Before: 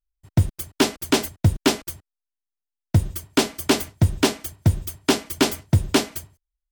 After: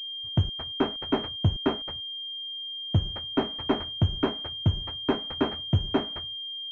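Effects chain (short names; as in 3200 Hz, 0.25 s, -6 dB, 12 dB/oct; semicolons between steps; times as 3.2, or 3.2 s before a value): pulse-width modulation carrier 3200 Hz; gain -6 dB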